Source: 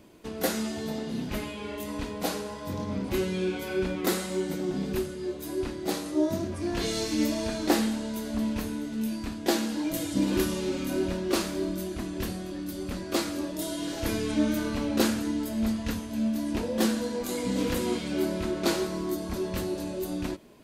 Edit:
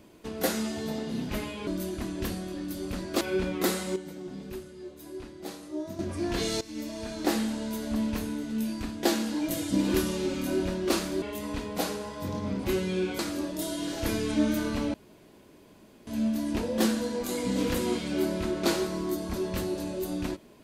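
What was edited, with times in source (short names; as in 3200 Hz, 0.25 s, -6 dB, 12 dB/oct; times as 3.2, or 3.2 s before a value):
1.67–3.64 swap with 11.65–13.19
4.39–6.42 gain -9.5 dB
7.04–8.09 fade in, from -16.5 dB
14.94–16.07 room tone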